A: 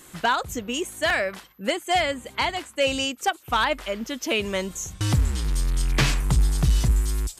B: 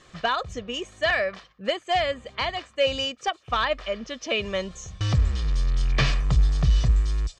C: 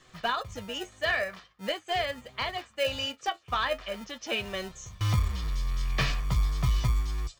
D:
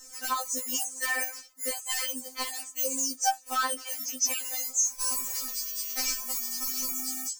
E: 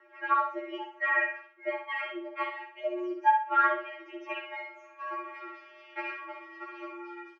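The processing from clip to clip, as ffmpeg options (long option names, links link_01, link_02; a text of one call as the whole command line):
ffmpeg -i in.wav -af "lowpass=frequency=5600:width=0.5412,lowpass=frequency=5600:width=1.3066,aecho=1:1:1.7:0.48,volume=-2.5dB" out.wav
ffmpeg -i in.wav -filter_complex "[0:a]flanger=delay=7.9:depth=3.8:regen=53:speed=0.43:shape=sinusoidal,acrossover=split=440[link_01][link_02];[link_01]acrusher=samples=39:mix=1:aa=0.000001[link_03];[link_03][link_02]amix=inputs=2:normalize=0" out.wav
ffmpeg -i in.wav -af "aexciter=amount=9.7:drive=8.9:freq=5500,alimiter=limit=-11.5dB:level=0:latency=1:release=116,afftfilt=real='re*3.46*eq(mod(b,12),0)':imag='im*3.46*eq(mod(b,12),0)':win_size=2048:overlap=0.75" out.wav
ffmpeg -i in.wav -af "aecho=1:1:63|126|189|252:0.531|0.17|0.0544|0.0174,highpass=frequency=220:width_type=q:width=0.5412,highpass=frequency=220:width_type=q:width=1.307,lowpass=frequency=2300:width_type=q:width=0.5176,lowpass=frequency=2300:width_type=q:width=0.7071,lowpass=frequency=2300:width_type=q:width=1.932,afreqshift=89,volume=4dB" out.wav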